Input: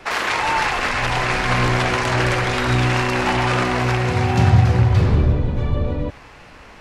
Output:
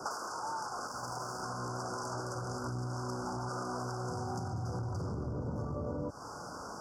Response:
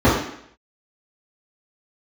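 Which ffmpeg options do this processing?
-filter_complex "[0:a]asettb=1/sr,asplit=3[a][b][c];[a]atrim=end=0.874[d];[b]atrim=start=0.87:end=1.43,asetpts=PTS-STARTPTS,afade=t=in:d=0.004:c=qsin,afade=t=out:st=0.556:d=0.004:c=qsin,aeval=exprs='if(lt(val(0),0),0.251*val(0),val(0))':c=same[e];[c]atrim=start=1.426[f];[d][e]acrossfade=d=0.004:c1=hsin:c2=qsin[g];[g][f]acrossfade=d=0.004:c1=qsin:c2=hsin,asettb=1/sr,asplit=3[h][i][j];[h]atrim=end=2.354[k];[i]atrim=start=2.35:end=3.49,asetpts=PTS-STARTPTS,afade=t=in:d=0.004:c=qsin,afade=t=out:st=1.136:d=0.004:c=qsin,lowshelf=f=180:g=10[l];[j]atrim=start=3.486[m];[k][l]acrossfade=d=0.004:c1=hsin:c2=qsin[n];[n][m]acrossfade=d=0.004:c1=qsin:c2=hsin,alimiter=limit=-13dB:level=0:latency=1:release=359,asoftclip=type=tanh:threshold=-17.5dB,highpass=120,equalizer=f=4.9k:w=0.36:g=7,acompressor=threshold=-33dB:ratio=10,asuperstop=centerf=2700:order=20:qfactor=0.8"

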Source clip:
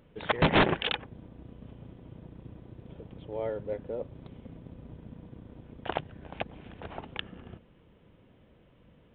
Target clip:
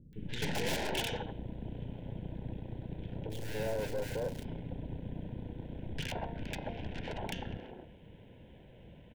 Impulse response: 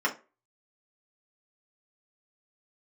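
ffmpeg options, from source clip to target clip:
-filter_complex "[0:a]asplit=3[a][b][c];[a]afade=t=out:st=3.17:d=0.02[d];[b]acrusher=bits=2:mode=log:mix=0:aa=0.000001,afade=t=in:st=3.17:d=0.02,afade=t=out:st=4.3:d=0.02[e];[c]afade=t=in:st=4.3:d=0.02[f];[d][e][f]amix=inputs=3:normalize=0,bandreject=f=230.2:t=h:w=4,bandreject=f=460.4:t=h:w=4,bandreject=f=690.6:t=h:w=4,bandreject=f=920.8:t=h:w=4,bandreject=f=1.151k:t=h:w=4,bandreject=f=1.3812k:t=h:w=4,bandreject=f=1.6114k:t=h:w=4,bandreject=f=1.8416k:t=h:w=4,bandreject=f=2.0718k:t=h:w=4,bandreject=f=2.302k:t=h:w=4,bandreject=f=2.5322k:t=h:w=4,bandreject=f=2.7624k:t=h:w=4,bandreject=f=2.9926k:t=h:w=4,bandreject=f=3.2228k:t=h:w=4,bandreject=f=3.453k:t=h:w=4,bandreject=f=3.6832k:t=h:w=4,bandreject=f=3.9134k:t=h:w=4,bandreject=f=4.1436k:t=h:w=4,bandreject=f=4.3738k:t=h:w=4,bandreject=f=4.604k:t=h:w=4,bandreject=f=4.8342k:t=h:w=4,bandreject=f=5.0644k:t=h:w=4,aeval=exprs='(tanh(126*val(0)+0.75)-tanh(0.75))/126':c=same,asuperstop=centerf=1200:order=4:qfactor=2.7,acrossover=split=300|1400[g][h][i];[i]adelay=130[j];[h]adelay=260[k];[g][k][j]amix=inputs=3:normalize=0,volume=10.5dB"

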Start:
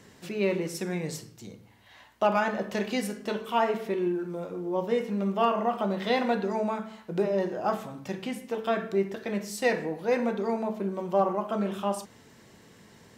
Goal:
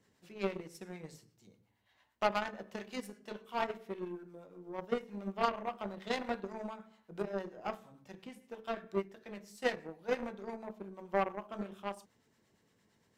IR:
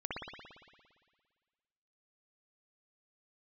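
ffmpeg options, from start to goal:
-filter_complex "[0:a]acrossover=split=690[a][b];[a]aeval=exprs='val(0)*(1-0.5/2+0.5/2*cos(2*PI*8.7*n/s))':c=same[c];[b]aeval=exprs='val(0)*(1-0.5/2-0.5/2*cos(2*PI*8.7*n/s))':c=same[d];[c][d]amix=inputs=2:normalize=0,aeval=exprs='0.2*(cos(1*acos(clip(val(0)/0.2,-1,1)))-cos(1*PI/2))+0.0501*(cos(3*acos(clip(val(0)/0.2,-1,1)))-cos(3*PI/2))+0.00282*(cos(4*acos(clip(val(0)/0.2,-1,1)))-cos(4*PI/2))+0.00251*(cos(7*acos(clip(val(0)/0.2,-1,1)))-cos(7*PI/2))':c=same"

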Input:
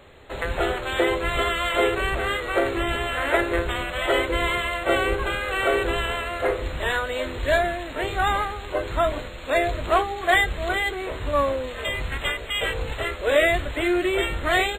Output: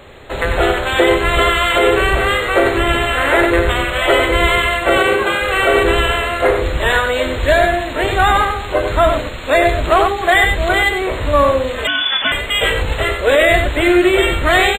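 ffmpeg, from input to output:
-filter_complex "[0:a]asettb=1/sr,asplit=3[a][b][c];[a]atrim=end=4.974[d];[b]atrim=start=4.97:end=5.42,asetpts=PTS-STARTPTS,afade=t=in:d=0.004:c=qsin,afade=t=out:st=0.446:d=0.004:c=qsin,highpass=170[e];[c]atrim=start=5.416[f];[d][e]acrossfade=d=0.004:c1=hsin:c2=qsin[g];[g][f]acrossfade=d=0.004:c1=qsin:c2=hsin,asplit=2[h][i];[i]aecho=0:1:93:0.447[j];[h][j]amix=inputs=2:normalize=0,asettb=1/sr,asplit=3[k][l][m];[k]atrim=end=11.874[n];[l]atrim=start=11.87:end=12.32,asetpts=PTS-STARTPTS,afade=t=in:d=0.004:c=qsin,afade=t=out:st=0.446:d=0.004:c=qsin,lowpass=f=3k:t=q:w=0.5098,lowpass=f=3k:t=q:w=0.6013,lowpass=f=3k:t=q:w=0.9,lowpass=f=3k:t=q:w=2.563,afreqshift=-3500[o];[m]atrim=start=12.316[p];[n][o]acrossfade=d=0.004:c1=hsin:c2=qsin[q];[q][p]acrossfade=d=0.004:c1=qsin:c2=hsin,alimiter=level_in=10.5dB:limit=-1dB:release=50:level=0:latency=1,volume=-1dB"

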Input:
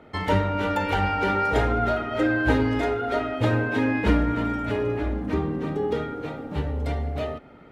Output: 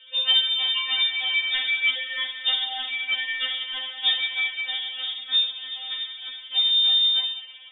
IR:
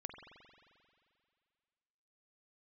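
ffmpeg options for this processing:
-filter_complex "[0:a]bandreject=f=50:t=h:w=6,bandreject=f=100:t=h:w=6,bandreject=f=150:t=h:w=6,bandreject=f=200:t=h:w=6,acrusher=bits=5:mode=log:mix=0:aa=0.000001,asplit=2[a][b];[1:a]atrim=start_sample=2205,asetrate=32634,aresample=44100[c];[b][c]afir=irnorm=-1:irlink=0,volume=2.5dB[d];[a][d]amix=inputs=2:normalize=0,lowpass=f=3.1k:t=q:w=0.5098,lowpass=f=3.1k:t=q:w=0.6013,lowpass=f=3.1k:t=q:w=0.9,lowpass=f=3.1k:t=q:w=2.563,afreqshift=-3700,afftfilt=real='re*3.46*eq(mod(b,12),0)':imag='im*3.46*eq(mod(b,12),0)':win_size=2048:overlap=0.75,volume=-2.5dB"

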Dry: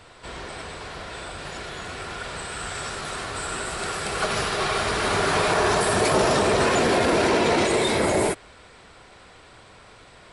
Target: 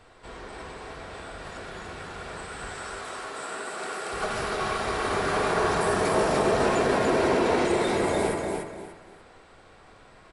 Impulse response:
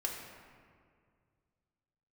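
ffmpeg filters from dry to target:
-filter_complex "[0:a]asettb=1/sr,asplit=3[a][b][c];[a]atrim=end=2.734[d];[b]atrim=start=2.73:end=4.13,asetpts=PTS-STARTPTS,afade=t=in:d=0.004:c=qsin,afade=t=out:st=1.396:d=0.004:c=qsin,highpass=270[e];[c]atrim=start=4.126[f];[d][e]acrossfade=d=0.004:c1=hsin:c2=qsin[g];[g][f]acrossfade=d=0.004:c1=qsin:c2=hsin,aecho=1:1:293|586|879:0.596|0.149|0.0372,asplit=2[h][i];[1:a]atrim=start_sample=2205,afade=t=out:st=0.44:d=0.01,atrim=end_sample=19845,lowpass=2.2k[j];[i][j]afir=irnorm=-1:irlink=0,volume=-2dB[k];[h][k]amix=inputs=2:normalize=0,volume=-9dB"

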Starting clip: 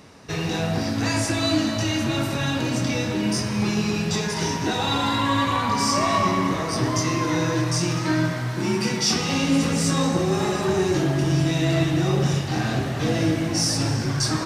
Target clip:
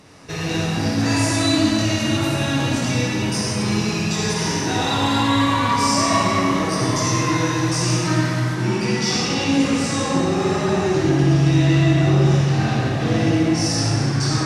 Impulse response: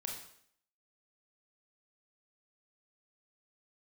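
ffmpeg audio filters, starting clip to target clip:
-filter_complex "[0:a]asetnsamples=n=441:p=0,asendcmd='8.55 highshelf g -10.5',highshelf=f=8.5k:g=3[a];[1:a]atrim=start_sample=2205,asetrate=23814,aresample=44100[b];[a][b]afir=irnorm=-1:irlink=0"

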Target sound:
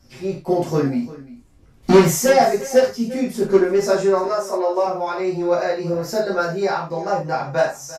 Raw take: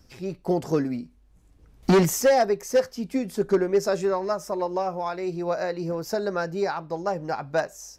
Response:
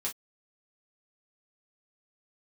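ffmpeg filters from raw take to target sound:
-filter_complex "[0:a]asettb=1/sr,asplit=3[a][b][c];[a]atrim=end=4.244[d];[b]atrim=start=4.24:end=4.85,asetpts=PTS-STARTPTS,afade=t=in:d=0.004:c=qsin,afade=t=out:st=0.606:d=0.004:c=qsin,highpass=f=270:w=0.5412,highpass=f=270:w=1.3066[e];[c]atrim=start=4.846[f];[d][e]acrossfade=d=0.004:c1=hsin:c2=qsin[g];[g][f]acrossfade=d=0.004:c1=qsin:c2=hsin,aecho=1:1:346:0.126[h];[1:a]atrim=start_sample=2205,asetrate=26460,aresample=44100[i];[h][i]afir=irnorm=-1:irlink=0"

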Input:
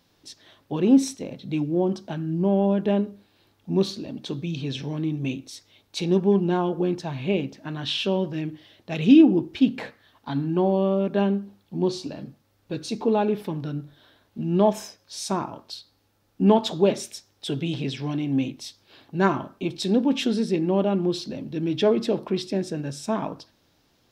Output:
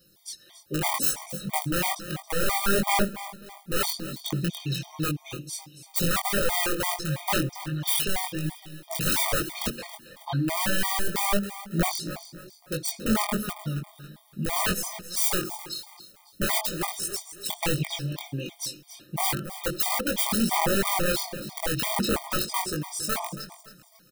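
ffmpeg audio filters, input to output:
-filter_complex "[0:a]bass=f=250:g=1,treble=f=4k:g=12,aecho=1:1:5.7:0.81,asettb=1/sr,asplit=3[a][b][c];[a]atrim=end=16.604[d];[b]atrim=start=16.6:end=17.13,asetpts=PTS-STARTPTS,afade=t=in:d=0.004:c=qsin,afade=t=out:st=0.526:d=0.004:c=qsin,acompressor=threshold=-21dB:ratio=4[e];[c]atrim=start=17.126[f];[d][e]acrossfade=d=0.004:c1=hsin:c2=qsin[g];[g][f]acrossfade=d=0.004:c1=qsin:c2=hsin,aeval=exprs='(mod(5.96*val(0)+1,2)-1)/5.96':c=same,aphaser=in_gain=1:out_gain=1:delay=2.5:decay=0.38:speed=0.68:type=sinusoidal,aexciter=amount=2.3:drive=5.5:freq=8.8k,flanger=delay=19.5:depth=3.5:speed=1.4,asplit=2[h][i];[i]aecho=0:1:276|552|828|1104:0.2|0.0778|0.0303|0.0118[j];[h][j]amix=inputs=2:normalize=0,afftfilt=real='re*gt(sin(2*PI*3*pts/sr)*(1-2*mod(floor(b*sr/1024/620),2)),0)':imag='im*gt(sin(2*PI*3*pts/sr)*(1-2*mod(floor(b*sr/1024/620),2)),0)':win_size=1024:overlap=0.75,volume=-1dB"

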